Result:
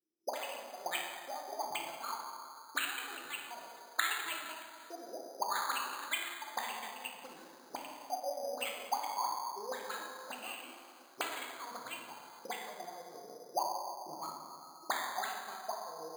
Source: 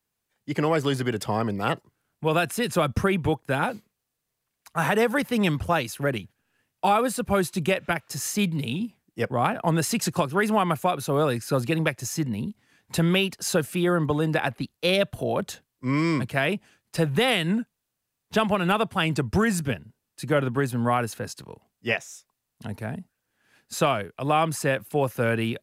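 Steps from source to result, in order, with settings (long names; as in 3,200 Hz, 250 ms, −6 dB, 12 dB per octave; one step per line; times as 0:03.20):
gliding playback speed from 176% → 141%
low-pass that shuts in the quiet parts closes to 670 Hz, open at −20 dBFS
parametric band 3,400 Hz −9.5 dB 2.6 octaves
mains-hum notches 60/120/180/240/300/360/420/480/540 Hz
sample-and-hold tremolo, depth 95%
envelope filter 340–2,700 Hz, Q 16, up, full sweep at −27.5 dBFS
dense smooth reverb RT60 2.2 s, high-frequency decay 0.35×, DRR −1 dB
bad sample-rate conversion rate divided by 8×, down filtered, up hold
one half of a high-frequency compander encoder only
level +11.5 dB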